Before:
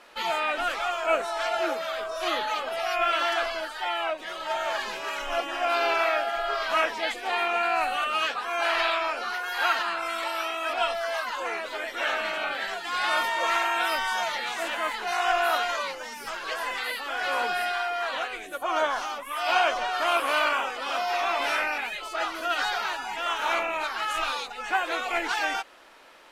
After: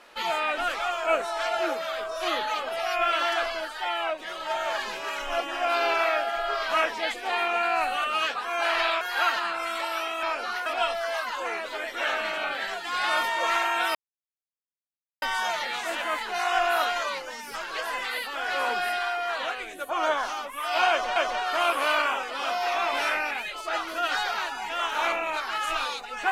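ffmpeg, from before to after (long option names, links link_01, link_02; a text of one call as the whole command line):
ffmpeg -i in.wav -filter_complex "[0:a]asplit=6[link_01][link_02][link_03][link_04][link_05][link_06];[link_01]atrim=end=9.012[link_07];[link_02]atrim=start=9.438:end=10.662[link_08];[link_03]atrim=start=9.008:end=9.442[link_09];[link_04]atrim=start=10.658:end=13.95,asetpts=PTS-STARTPTS,afade=type=out:start_time=3.288:duration=0.004:curve=hsin,apad=pad_dur=1.27[link_10];[link_05]atrim=start=13.95:end=19.892,asetpts=PTS-STARTPTS,afade=type=in:duration=0.004:curve=hsin[link_11];[link_06]atrim=start=19.628[link_12];[link_07][link_08]acrossfade=duration=0.004:curve1=hsin:curve2=hsin[link_13];[link_13][link_09]acrossfade=duration=0.004:curve1=hsin:curve2=hsin[link_14];[link_10][link_11]concat=n=2:v=0:a=1[link_15];[link_14][link_15]acrossfade=duration=0.004:curve1=hsin:curve2=hsin[link_16];[link_16][link_12]acrossfade=duration=0.004:curve1=hsin:curve2=hsin" out.wav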